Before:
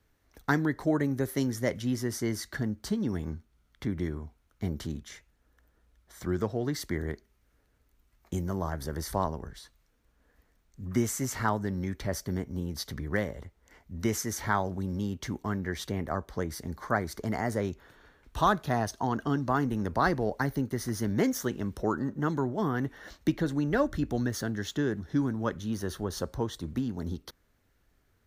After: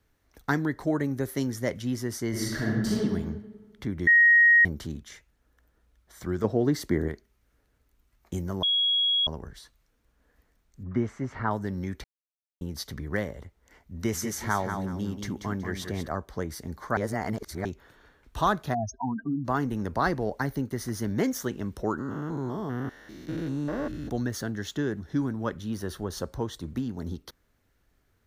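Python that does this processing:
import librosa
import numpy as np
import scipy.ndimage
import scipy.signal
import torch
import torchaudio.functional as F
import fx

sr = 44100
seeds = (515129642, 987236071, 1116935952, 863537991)

y = fx.reverb_throw(x, sr, start_s=2.29, length_s=0.66, rt60_s=1.4, drr_db=-5.5)
y = fx.peak_eq(y, sr, hz=300.0, db=8.0, octaves=2.8, at=(6.44, 7.08))
y = fx.lowpass(y, sr, hz=1900.0, slope=12, at=(10.83, 11.51))
y = fx.echo_feedback(y, sr, ms=186, feedback_pct=27, wet_db=-7, at=(13.95, 16.08))
y = fx.spec_expand(y, sr, power=3.8, at=(18.73, 19.44), fade=0.02)
y = fx.spec_steps(y, sr, hold_ms=200, at=(21.98, 24.08), fade=0.02)
y = fx.notch(y, sr, hz=6400.0, q=12.0, at=(25.23, 25.97))
y = fx.edit(y, sr, fx.bleep(start_s=4.07, length_s=0.58, hz=1880.0, db=-14.0),
    fx.bleep(start_s=8.63, length_s=0.64, hz=3320.0, db=-21.0),
    fx.silence(start_s=12.04, length_s=0.57),
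    fx.reverse_span(start_s=16.97, length_s=0.68), tone=tone)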